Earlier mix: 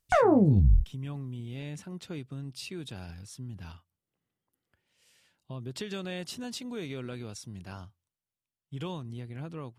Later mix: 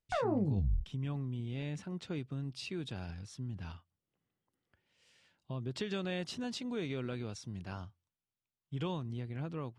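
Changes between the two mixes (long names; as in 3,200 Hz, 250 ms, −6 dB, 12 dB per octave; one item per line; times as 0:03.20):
background −11.0 dB
master: add high-frequency loss of the air 75 metres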